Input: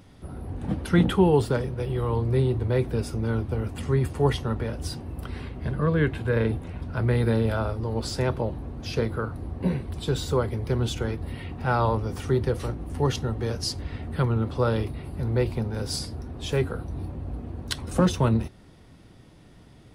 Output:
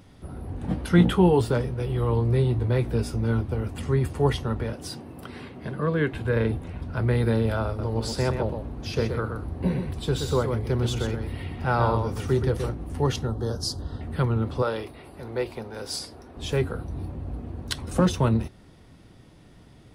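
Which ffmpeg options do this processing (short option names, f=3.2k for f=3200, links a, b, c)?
-filter_complex "[0:a]asettb=1/sr,asplit=3[a][b][c];[a]atrim=end=0.684[d];[b]atrim=start=0.68:end=3.41,asetpts=PTS-STARTPTS,afade=t=in:d=0.004:c=qsin,afade=t=out:st=2.726:d=0.004:c=qsin,asplit=2[e][f];[f]adelay=17,volume=-7.5dB[g];[e][g]amix=inputs=2:normalize=0,atrim=end_sample=120393[h];[c]atrim=start=3.406[i];[d][h]acrossfade=d=0.004:c1=hsin:c2=qsin[j];[j][i]acrossfade=d=0.004:c1=qsin:c2=hsin,asettb=1/sr,asplit=3[k][l][m];[k]atrim=end=4.734[n];[l]atrim=start=4.73:end=6.14,asetpts=PTS-STARTPTS,afade=t=in:d=0.004:c=qsin,afade=t=out:st=1.406:d=0.004:c=qsin,highpass=160[o];[m]atrim=start=6.136[p];[n][o]acrossfade=d=0.004:c1=hsin:c2=qsin[q];[q][p]acrossfade=d=0.004:c1=qsin:c2=hsin,asettb=1/sr,asplit=3[r][s][t];[r]atrim=end=7.664[u];[s]atrim=start=7.66:end=12.69,asetpts=PTS-STARTPTS,afade=t=in:d=0.004:c=qsin,afade=t=out:st=5.026:d=0.004:c=qsin,aecho=1:1:125:0.473,atrim=end_sample=221823[v];[t]atrim=start=12.686[w];[u][v]acrossfade=d=0.004:c1=hsin:c2=qsin[x];[x][w]acrossfade=d=0.004:c1=qsin:c2=hsin,asettb=1/sr,asplit=3[y][z][aa];[y]atrim=end=13.274[ab];[z]atrim=start=13.27:end=14.01,asetpts=PTS-STARTPTS,afade=t=in:d=0.004:c=qsin,afade=t=out:st=0.736:d=0.004:c=qsin,asuperstop=centerf=2300:order=4:qfactor=1.2[ac];[aa]atrim=start=14.006[ad];[ab][ac]acrossfade=d=0.004:c1=hsin:c2=qsin[ae];[ae][ad]acrossfade=d=0.004:c1=qsin:c2=hsin,asettb=1/sr,asplit=3[af][ag][ah];[af]atrim=end=14.624[ai];[ag]atrim=start=14.62:end=16.37,asetpts=PTS-STARTPTS,afade=t=in:d=0.004:c=qsin,afade=t=out:st=1.746:d=0.004:c=qsin,bass=f=250:g=-15,treble=f=4k:g=-1[aj];[ah]atrim=start=16.366[ak];[ai][aj]acrossfade=d=0.004:c1=hsin:c2=qsin[al];[al][ak]acrossfade=d=0.004:c1=qsin:c2=hsin"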